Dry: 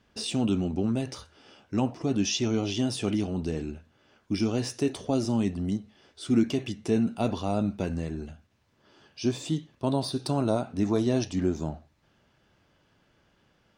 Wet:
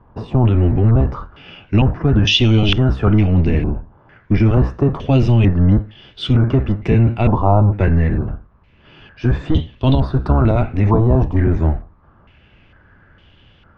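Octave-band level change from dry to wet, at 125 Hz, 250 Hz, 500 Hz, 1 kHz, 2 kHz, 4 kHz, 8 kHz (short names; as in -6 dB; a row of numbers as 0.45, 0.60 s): +19.5 dB, +9.0 dB, +9.0 dB, +13.0 dB, +14.5 dB, +12.5 dB, n/a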